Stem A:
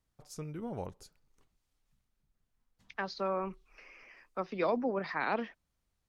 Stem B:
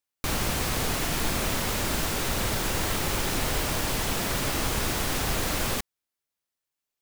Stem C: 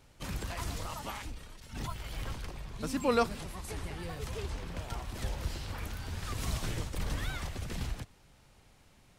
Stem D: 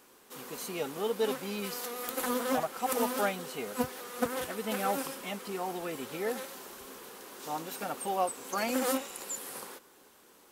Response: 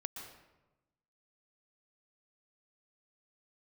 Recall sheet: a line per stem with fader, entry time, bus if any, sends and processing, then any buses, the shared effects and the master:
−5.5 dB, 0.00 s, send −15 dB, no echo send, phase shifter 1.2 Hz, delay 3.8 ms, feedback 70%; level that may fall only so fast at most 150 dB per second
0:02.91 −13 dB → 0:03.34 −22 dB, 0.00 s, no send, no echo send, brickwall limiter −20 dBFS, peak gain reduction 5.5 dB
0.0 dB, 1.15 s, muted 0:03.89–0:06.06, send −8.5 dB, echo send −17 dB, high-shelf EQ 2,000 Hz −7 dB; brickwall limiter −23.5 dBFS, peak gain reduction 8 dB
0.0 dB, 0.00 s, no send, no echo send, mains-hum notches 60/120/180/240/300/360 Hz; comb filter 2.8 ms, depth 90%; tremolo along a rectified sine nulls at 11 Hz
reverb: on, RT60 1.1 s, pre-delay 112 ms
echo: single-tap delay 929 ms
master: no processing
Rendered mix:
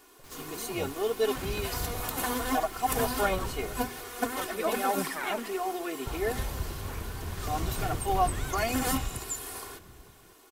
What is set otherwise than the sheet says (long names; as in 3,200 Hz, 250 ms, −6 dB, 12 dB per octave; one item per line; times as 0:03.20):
stem B −13.0 dB → −22.0 dB
stem D: missing tremolo along a rectified sine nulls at 11 Hz